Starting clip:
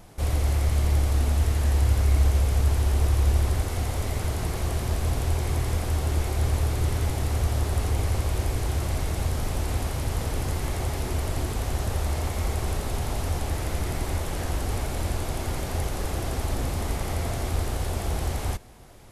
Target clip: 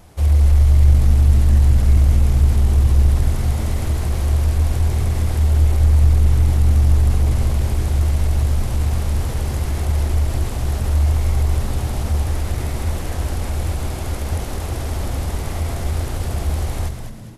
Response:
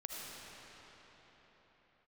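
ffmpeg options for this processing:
-filter_complex "[0:a]equalizer=f=74:w=6.9:g=13,asplit=2[s0][s1];[s1]asoftclip=type=tanh:threshold=0.188,volume=0.562[s2];[s0][s2]amix=inputs=2:normalize=0,bandreject=f=220.9:t=h:w=4,bandreject=f=441.8:t=h:w=4,bandreject=f=662.7:t=h:w=4,atempo=1.1,asplit=6[s3][s4][s5][s6][s7][s8];[s4]adelay=206,afreqshift=-97,volume=0.447[s9];[s5]adelay=412,afreqshift=-194,volume=0.178[s10];[s6]adelay=618,afreqshift=-291,volume=0.0716[s11];[s7]adelay=824,afreqshift=-388,volume=0.0285[s12];[s8]adelay=1030,afreqshift=-485,volume=0.0115[s13];[s3][s9][s10][s11][s12][s13]amix=inputs=6:normalize=0,volume=0.794"

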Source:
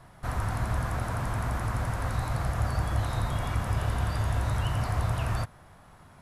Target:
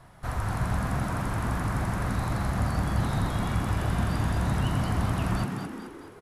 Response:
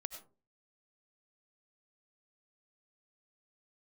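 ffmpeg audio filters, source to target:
-filter_complex "[0:a]asplit=7[s0][s1][s2][s3][s4][s5][s6];[s1]adelay=214,afreqshift=75,volume=0.531[s7];[s2]adelay=428,afreqshift=150,volume=0.26[s8];[s3]adelay=642,afreqshift=225,volume=0.127[s9];[s4]adelay=856,afreqshift=300,volume=0.0624[s10];[s5]adelay=1070,afreqshift=375,volume=0.0305[s11];[s6]adelay=1284,afreqshift=450,volume=0.015[s12];[s0][s7][s8][s9][s10][s11][s12]amix=inputs=7:normalize=0"

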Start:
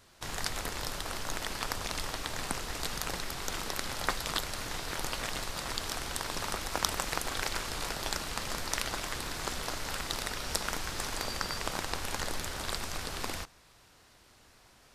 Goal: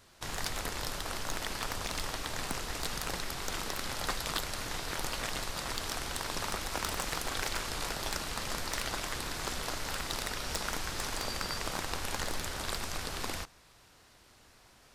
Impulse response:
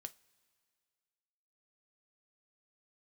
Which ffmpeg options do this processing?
-af "volume=13.3,asoftclip=hard,volume=0.075"

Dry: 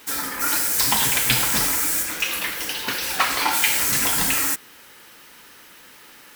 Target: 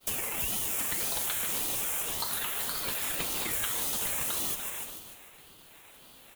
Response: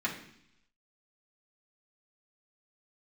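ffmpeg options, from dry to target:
-filter_complex "[0:a]lowshelf=f=480:g=-10,asplit=2[s0][s1];[s1]acompressor=threshold=0.0316:ratio=6,volume=1.06[s2];[s0][s2]amix=inputs=2:normalize=0,asplit=4[s3][s4][s5][s6];[s4]adelay=288,afreqshift=-130,volume=0.112[s7];[s5]adelay=576,afreqshift=-260,volume=0.0394[s8];[s6]adelay=864,afreqshift=-390,volume=0.0138[s9];[s3][s7][s8][s9]amix=inputs=4:normalize=0,agate=range=0.0224:threshold=0.0224:ratio=3:detection=peak,asuperstop=centerf=4600:order=4:qfactor=1.3,aecho=1:1:148|296|444|592|740:0.316|0.155|0.0759|0.0372|0.0182,acrossover=split=540|3700[s10][s11][s12];[s10]acompressor=threshold=0.00562:ratio=4[s13];[s11]acompressor=threshold=0.0158:ratio=4[s14];[s12]acompressor=threshold=0.0398:ratio=4[s15];[s13][s14][s15]amix=inputs=3:normalize=0,highpass=f=260:w=0.5412,highpass=f=260:w=1.3066,aeval=exprs='val(0)*sin(2*PI*1200*n/s+1200*0.35/1.8*sin(2*PI*1.8*n/s))':c=same"

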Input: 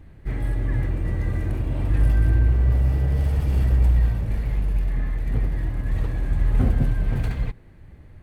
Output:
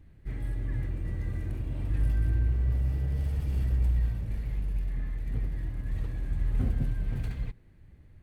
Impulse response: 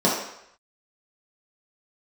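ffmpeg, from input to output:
-af "equalizer=f=810:w=0.59:g=-5.5,volume=0.398"

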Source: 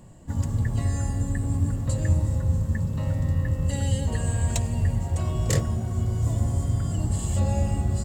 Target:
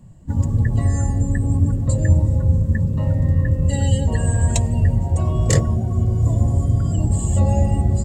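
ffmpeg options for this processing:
-af "afftdn=nr=12:nf=-38,volume=2.24"

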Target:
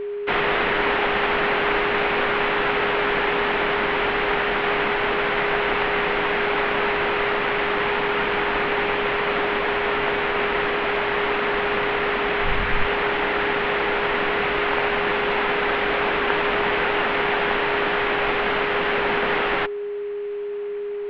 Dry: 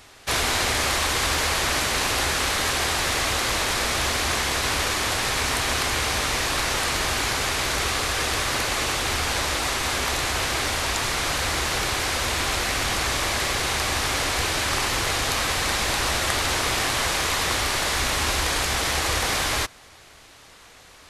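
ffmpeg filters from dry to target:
-filter_complex "[0:a]highpass=f=190:t=q:w=0.5412,highpass=f=190:t=q:w=1.307,lowpass=f=3100:t=q:w=0.5176,lowpass=f=3100:t=q:w=0.7071,lowpass=f=3100:t=q:w=1.932,afreqshift=-280,equalizer=f=83:w=0.88:g=-14,aeval=exprs='val(0)+0.0316*sin(2*PI*410*n/s)':c=same,asplit=3[s0][s1][s2];[s0]afade=t=out:st=12.43:d=0.02[s3];[s1]asubboost=boost=7:cutoff=120,afade=t=in:st=12.43:d=0.02,afade=t=out:st=12.85:d=0.02[s4];[s2]afade=t=in:st=12.85:d=0.02[s5];[s3][s4][s5]amix=inputs=3:normalize=0,volume=1.68"

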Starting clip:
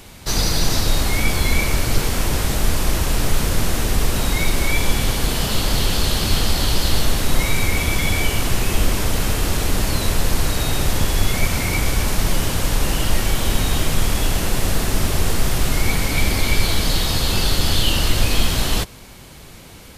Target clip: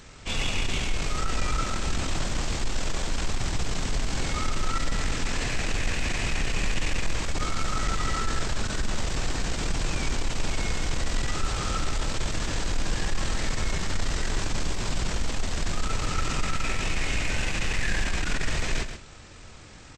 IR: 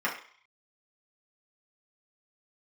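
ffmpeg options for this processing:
-af "asoftclip=type=tanh:threshold=0.2,asetrate=25476,aresample=44100,atempo=1.73107,aecho=1:1:131:0.355,volume=0.562"

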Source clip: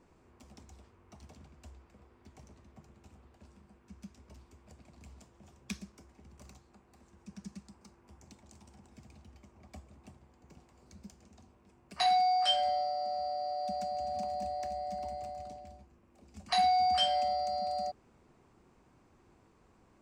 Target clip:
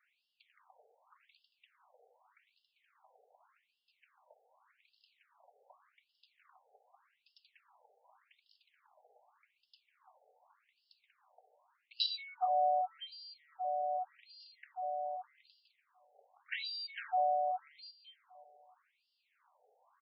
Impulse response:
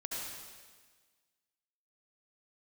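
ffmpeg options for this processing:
-af "aecho=1:1:534|1068|1602:0.106|0.0339|0.0108,afftfilt=real='re*between(b*sr/1024,590*pow(3900/590,0.5+0.5*sin(2*PI*0.85*pts/sr))/1.41,590*pow(3900/590,0.5+0.5*sin(2*PI*0.85*pts/sr))*1.41)':imag='im*between(b*sr/1024,590*pow(3900/590,0.5+0.5*sin(2*PI*0.85*pts/sr))/1.41,590*pow(3900/590,0.5+0.5*sin(2*PI*0.85*pts/sr))*1.41)':win_size=1024:overlap=0.75,volume=1.19"

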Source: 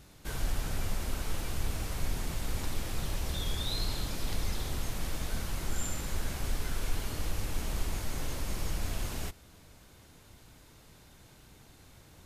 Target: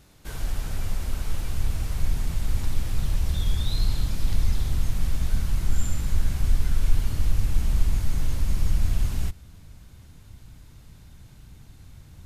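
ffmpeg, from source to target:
-af "asubboost=boost=4:cutoff=200"

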